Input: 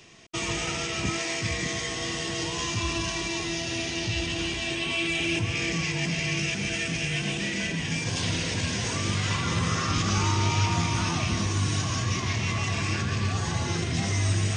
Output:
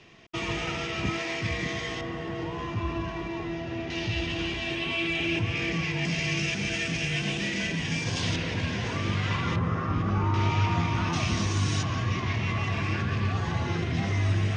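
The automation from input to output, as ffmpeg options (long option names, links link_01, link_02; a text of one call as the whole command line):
ffmpeg -i in.wav -af "asetnsamples=nb_out_samples=441:pad=0,asendcmd='2.01 lowpass f 1500;3.9 lowpass f 3400;6.05 lowpass f 5800;8.36 lowpass f 3000;9.56 lowpass f 1300;10.34 lowpass f 2700;11.13 lowpass f 6400;11.83 lowpass f 2900',lowpass=3400" out.wav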